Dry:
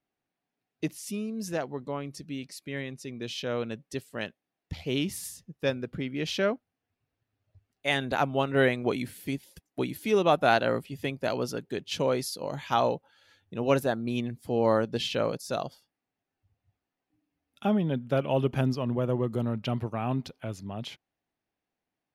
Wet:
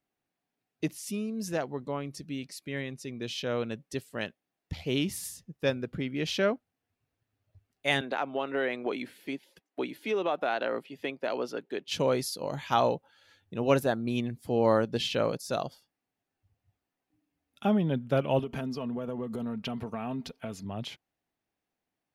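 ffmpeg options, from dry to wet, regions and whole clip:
ffmpeg -i in.wav -filter_complex "[0:a]asettb=1/sr,asplit=3[link_01][link_02][link_03];[link_01]atrim=end=8.014[link_04];[link_02]atrim=start=8.01:end=11.88,asetpts=PTS-STARTPTS,afade=type=in:duration=0.004:curve=qsin,afade=type=out:start_time=3.866:duration=0.004:curve=qsin,acrossover=split=240 4200:gain=0.0708 1 0.224[link_05][link_06][link_07];[link_05][link_06][link_07]amix=inputs=3:normalize=0,acompressor=threshold=-25dB:ratio=4:attack=3.2:release=140:knee=1:detection=peak[link_08];[link_03]atrim=start=11.876[link_09];[link_04][link_08]acrossfade=duration=0.004:curve1=hsin:curve2=qsin[link_10];[link_10][link_09]acrossfade=duration=0.004:curve1=qsin:curve2=hsin,asettb=1/sr,asplit=3[link_11][link_12][link_13];[link_11]atrim=end=18.394[link_14];[link_12]atrim=start=18.39:end=20.65,asetpts=PTS-STARTPTS,afade=type=in:duration=0.004:curve=qsin,afade=type=out:start_time=2.256:duration=0.004:curve=qsin,aecho=1:1:4.4:0.54,atrim=end_sample=99666,acompressor=threshold=-30dB:ratio=12:attack=3.2:release=140:knee=1:detection=peak[link_15];[link_13]atrim=start=20.646[link_16];[link_14][link_15]acrossfade=duration=0.004:curve1=hsin:curve2=qsin[link_17];[link_17][link_16]acrossfade=duration=0.004:curve1=qsin:curve2=hsin" out.wav

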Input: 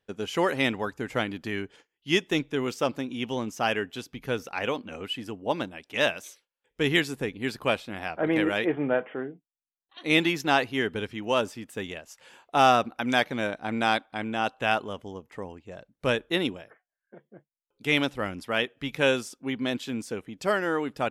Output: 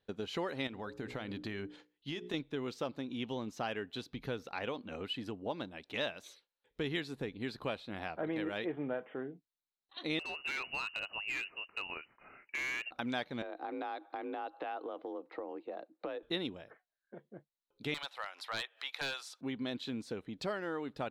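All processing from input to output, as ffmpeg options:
ffmpeg -i in.wav -filter_complex "[0:a]asettb=1/sr,asplit=3[link_01][link_02][link_03];[link_01]atrim=end=0.674[link_04];[link_02]atrim=start=0.67:end=2.34,asetpts=PTS-STARTPTS,afade=type=in:duration=0.004:curve=qsin,afade=type=out:start_time=1.666:duration=0.004:curve=qsin,bandreject=frequency=60:width_type=h:width=6,bandreject=frequency=120:width_type=h:width=6,bandreject=frequency=180:width_type=h:width=6,bandreject=frequency=240:width_type=h:width=6,bandreject=frequency=300:width_type=h:width=6,bandreject=frequency=360:width_type=h:width=6,bandreject=frequency=420:width_type=h:width=6,bandreject=frequency=480:width_type=h:width=6,bandreject=frequency=540:width_type=h:width=6,acompressor=threshold=-31dB:ratio=4:attack=3.2:release=140:knee=1:detection=peak[link_05];[link_03]atrim=start=2.336[link_06];[link_04][link_05]acrossfade=duration=0.004:curve1=hsin:curve2=qsin[link_07];[link_07][link_06]acrossfade=duration=0.004:curve1=qsin:curve2=hsin,asettb=1/sr,asplit=3[link_08][link_09][link_10];[link_08]atrim=end=10.194[link_11];[link_09]atrim=start=10.19:end=12.91,asetpts=PTS-STARTPTS,afade=type=in:duration=0.004:curve=qsin,afade=type=out:start_time=2.716:duration=0.004:curve=qsin,lowpass=frequency=2600:width_type=q:width=0.5098,lowpass=frequency=2600:width_type=q:width=0.6013,lowpass=frequency=2600:width_type=q:width=0.9,lowpass=frequency=2600:width_type=q:width=2.563,afreqshift=-3000,acompressor=threshold=-26dB:ratio=1.5:attack=3.2:release=140:knee=1:detection=peak,asoftclip=type=hard:threshold=-25dB[link_12];[link_10]atrim=start=12.906[link_13];[link_11][link_12]acrossfade=duration=0.004:curve1=hsin:curve2=qsin[link_14];[link_14][link_13]acrossfade=duration=0.004:curve1=qsin:curve2=hsin,asettb=1/sr,asplit=3[link_15][link_16][link_17];[link_15]atrim=end=13.424[link_18];[link_16]atrim=start=13.42:end=16.23,asetpts=PTS-STARTPTS,afade=type=in:duration=0.004:curve=qsin,afade=type=out:start_time=2.806:duration=0.004:curve=qsin,highpass=frequency=190:width=0.5412,highpass=frequency=190:width=1.3066,equalizer=frequency=200:width_type=q:width=4:gain=-7,equalizer=frequency=280:width_type=q:width=4:gain=10,equalizer=frequency=450:width_type=q:width=4:gain=8,equalizer=frequency=720:width_type=q:width=4:gain=9,equalizer=frequency=1200:width_type=q:width=4:gain=5,equalizer=frequency=3200:width_type=q:width=4:gain=-6,lowpass=frequency=4100:width=0.5412,lowpass=frequency=4100:width=1.3066,acompressor=threshold=-34dB:ratio=3:attack=3.2:release=140:knee=1:detection=peak,afreqshift=39[link_19];[link_17]atrim=start=16.226[link_20];[link_18][link_19]acrossfade=duration=0.004:curve1=hsin:curve2=qsin[link_21];[link_21][link_20]acrossfade=duration=0.004:curve1=qsin:curve2=hsin,asettb=1/sr,asplit=3[link_22][link_23][link_24];[link_22]atrim=end=17.944[link_25];[link_23]atrim=start=17.94:end=19.41,asetpts=PTS-STARTPTS,afade=type=in:duration=0.004:curve=qsin,afade=type=out:start_time=1.466:duration=0.004:curve=qsin,highpass=frequency=770:width=0.5412,highpass=frequency=770:width=1.3066,acompressor=mode=upward:threshold=-36dB:ratio=2.5:attack=3.2:release=140:knee=2.83:detection=peak,aeval=exprs='0.0891*(abs(mod(val(0)/0.0891+3,4)-2)-1)':channel_layout=same[link_26];[link_24]atrim=start=19.406[link_27];[link_25][link_26]acrossfade=duration=0.004:curve1=hsin:curve2=qsin[link_28];[link_28][link_27]acrossfade=duration=0.004:curve1=qsin:curve2=hsin,highshelf=frequency=3000:gain=-11,acompressor=threshold=-38dB:ratio=2.5,equalizer=frequency=4000:width_type=o:width=0.4:gain=14,volume=-1dB" out.wav

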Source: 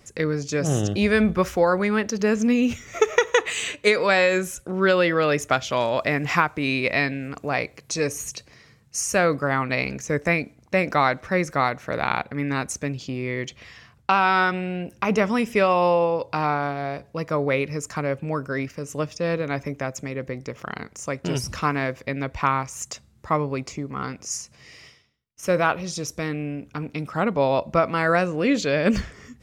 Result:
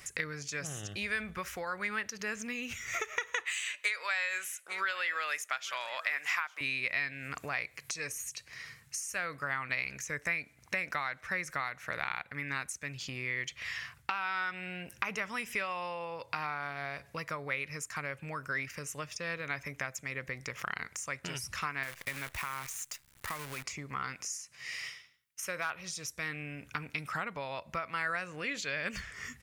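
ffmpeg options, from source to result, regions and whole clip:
ffmpeg -i in.wav -filter_complex "[0:a]asettb=1/sr,asplit=3[link_01][link_02][link_03];[link_01]atrim=end=3.444[link_04];[link_02]atrim=start=3.44:end=6.61,asetpts=PTS-STARTPTS,afade=type=in:duration=0.004:curve=qsin,afade=type=out:start_time=3.166:duration=0.004:curve=qsin,highpass=720,aecho=1:1:847:0.106,atrim=end_sample=139797[link_05];[link_03]atrim=start=6.606[link_06];[link_04][link_05]acrossfade=duration=0.004:curve1=hsin:curve2=qsin[link_07];[link_07][link_06]acrossfade=duration=0.004:curve1=qsin:curve2=hsin,asettb=1/sr,asplit=3[link_08][link_09][link_10];[link_08]atrim=end=21.834[link_11];[link_09]atrim=start=21.83:end=23.64,asetpts=PTS-STARTPTS,afade=type=in:duration=0.004:curve=qsin,afade=type=out:start_time=1.806:duration=0.004:curve=qsin,acompressor=threshold=-27dB:ratio=4:attack=3.2:release=140:knee=1:detection=peak,acrusher=bits=7:dc=4:mix=0:aa=0.000001[link_12];[link_10]atrim=start=23.636[link_13];[link_11][link_12]acrossfade=duration=0.004:curve1=hsin:curve2=qsin[link_14];[link_14][link_13]acrossfade=duration=0.004:curve1=qsin:curve2=hsin,asettb=1/sr,asplit=3[link_15][link_16][link_17];[link_15]atrim=end=24.144[link_18];[link_16]atrim=start=24.14:end=25.7,asetpts=PTS-STARTPTS,afade=type=in:duration=0.004:curve=qsin,afade=type=out:start_time=1.556:duration=0.004:curve=qsin,lowshelf=frequency=120:gain=-9.5,asoftclip=type=hard:threshold=-10.5dB[link_19];[link_17]atrim=start=25.696[link_20];[link_18][link_19]acrossfade=duration=0.004:curve1=hsin:curve2=qsin[link_21];[link_21][link_20]acrossfade=duration=0.004:curve1=qsin:curve2=hsin,firequalizer=gain_entry='entry(140,0);entry(230,-6);entry(1000,0);entry(9800,14)':delay=0.05:min_phase=1,acompressor=threshold=-36dB:ratio=6,equalizer=frequency=1900:width_type=o:width=1.7:gain=12,volume=-4.5dB" out.wav

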